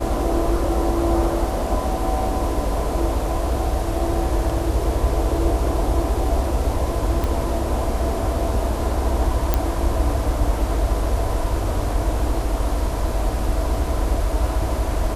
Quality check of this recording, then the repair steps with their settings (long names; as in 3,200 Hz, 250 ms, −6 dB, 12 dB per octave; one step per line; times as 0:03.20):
0:07.24: click
0:09.54: click −4 dBFS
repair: click removal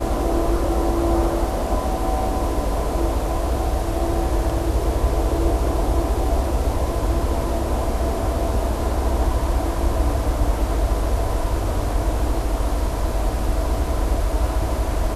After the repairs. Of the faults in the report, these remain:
none of them is left